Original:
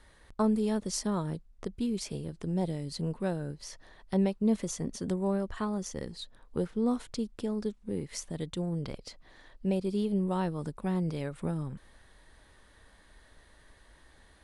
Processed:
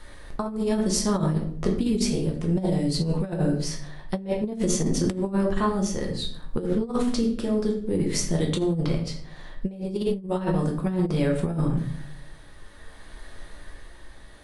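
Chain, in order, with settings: tremolo 0.6 Hz, depth 37%; shoebox room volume 88 m³, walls mixed, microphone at 0.82 m; negative-ratio compressor -30 dBFS, ratio -0.5; gain +7 dB

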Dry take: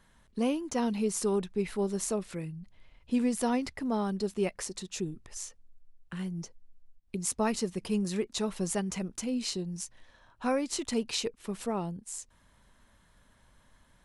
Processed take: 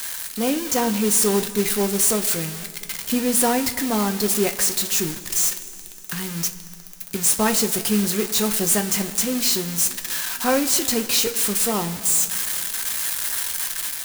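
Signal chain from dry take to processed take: switching spikes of -23 dBFS; bell 1600 Hz +4 dB 0.61 oct; two-slope reverb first 0.21 s, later 2.9 s, from -18 dB, DRR 6 dB; modulation noise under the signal 13 dB; AGC gain up to 4.5 dB; gain +3 dB

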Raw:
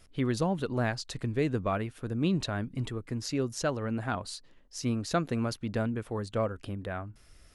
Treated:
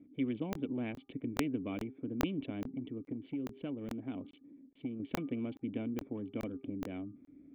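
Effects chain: Wiener smoothing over 15 samples; vocal tract filter i; high shelf 3200 Hz -10.5 dB; de-hum 402.2 Hz, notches 3; 2.63–5 compressor 3:1, threshold -43 dBFS, peak gain reduction 9.5 dB; HPF 190 Hz 12 dB/oct; bell 280 Hz +10 dB 0.39 oct; crackling interface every 0.42 s, samples 1024, zero, from 0.53; spectral compressor 2:1; gain +2 dB

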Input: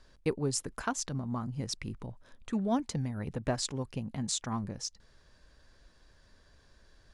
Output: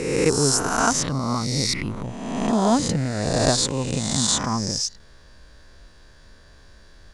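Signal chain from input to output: spectral swells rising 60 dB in 1.43 s; gain +8.5 dB

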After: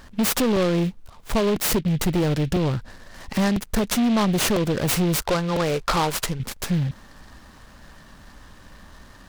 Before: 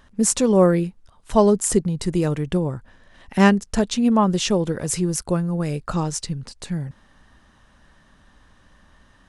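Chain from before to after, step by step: compressor 6:1, threshold -20 dBFS, peak gain reduction 11 dB; 5.22–6.4 graphic EQ 125/250/500/1000/2000/4000/8000 Hz -9/-7/+4/+8/+3/+4/-9 dB; soft clip -24.5 dBFS, distortion -10 dB; crackling interface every 1.00 s, samples 128, repeat, from 0.56; noise-modulated delay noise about 2600 Hz, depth 0.057 ms; gain +8 dB

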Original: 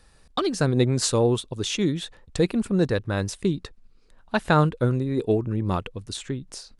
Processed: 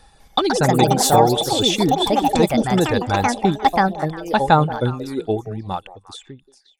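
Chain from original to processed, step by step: ending faded out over 2.25 s; reverb removal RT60 1.1 s; in parallel at -2.5 dB: limiter -16.5 dBFS, peak gain reduction 9.5 dB; on the sum: echoes that change speed 0.202 s, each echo +4 st, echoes 3; small resonant body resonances 810/3500 Hz, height 15 dB, ringing for 45 ms; on a send: delay with a stepping band-pass 0.177 s, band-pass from 520 Hz, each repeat 1.4 oct, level -11 dB

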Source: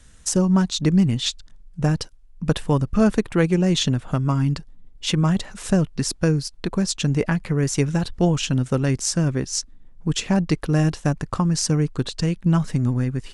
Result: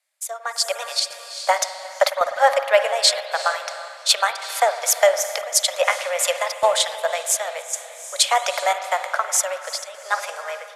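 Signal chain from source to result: steep high-pass 440 Hz 72 dB/oct; high shelf 8800 Hz -6 dB; diffused feedback echo 0.476 s, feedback 41%, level -12 dB; chopper 0.73 Hz, depth 65%, duty 90%; wide varispeed 1.24×; AGC gain up to 13.5 dB; spring tank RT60 3.4 s, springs 51 ms, chirp 70 ms, DRR 8 dB; three-band expander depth 40%; gain -2 dB

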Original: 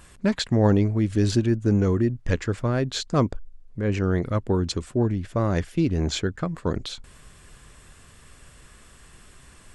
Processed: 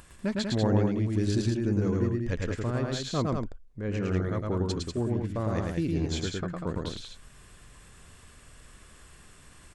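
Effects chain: upward compressor, threshold -40 dBFS; loudspeakers at several distances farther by 37 m -2 dB, 66 m -5 dB; gain -8 dB

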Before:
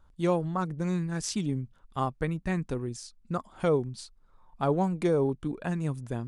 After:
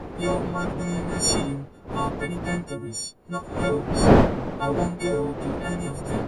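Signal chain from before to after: frequency quantiser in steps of 4 st; wind noise 490 Hz -26 dBFS

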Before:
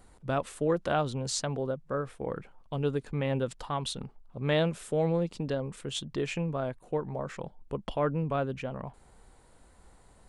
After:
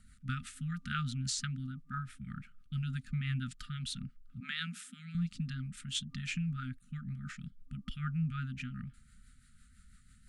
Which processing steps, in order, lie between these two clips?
4.4–5.15 steep high-pass 180 Hz 96 dB/oct; FFT band-reject 260–1200 Hz; rotary speaker horn 6 Hz

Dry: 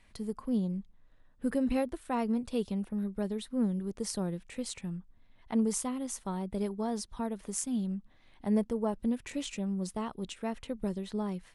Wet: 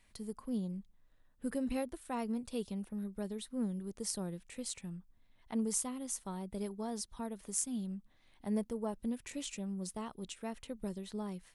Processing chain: high shelf 5300 Hz +9.5 dB; gain -6.5 dB

